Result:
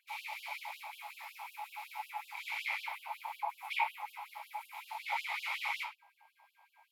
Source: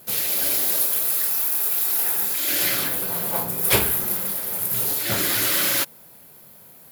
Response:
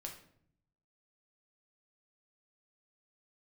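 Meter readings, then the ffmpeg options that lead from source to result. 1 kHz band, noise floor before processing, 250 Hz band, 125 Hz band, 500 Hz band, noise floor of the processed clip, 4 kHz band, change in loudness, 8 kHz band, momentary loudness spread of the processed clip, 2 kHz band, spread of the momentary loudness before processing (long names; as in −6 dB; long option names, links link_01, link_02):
−4.5 dB, −48 dBFS, below −40 dB, below −40 dB, −26.0 dB, −74 dBFS, −18.0 dB, −20.5 dB, −34.0 dB, 10 LU, −9.0 dB, 5 LU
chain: -filter_complex "[0:a]highshelf=frequency=2100:gain=-10,acrossover=split=520|3600[link_01][link_02][link_03];[link_03]alimiter=limit=-24dB:level=0:latency=1:release=362[link_04];[link_01][link_02][link_04]amix=inputs=3:normalize=0,aeval=exprs='val(0)+0.00251*sin(2*PI*1600*n/s)':channel_layout=same,asplit=3[link_05][link_06][link_07];[link_05]bandpass=frequency=300:width_type=q:width=8,volume=0dB[link_08];[link_06]bandpass=frequency=870:width_type=q:width=8,volume=-6dB[link_09];[link_07]bandpass=frequency=2240:width_type=q:width=8,volume=-9dB[link_10];[link_08][link_09][link_10]amix=inputs=3:normalize=0[link_11];[1:a]atrim=start_sample=2205,afade=type=out:start_time=0.16:duration=0.01,atrim=end_sample=7497[link_12];[link_11][link_12]afir=irnorm=-1:irlink=0,afftfilt=real='re*gte(b*sr/1024,540*pow(2800/540,0.5+0.5*sin(2*PI*5.4*pts/sr)))':imag='im*gte(b*sr/1024,540*pow(2800/540,0.5+0.5*sin(2*PI*5.4*pts/sr)))':win_size=1024:overlap=0.75,volume=17dB"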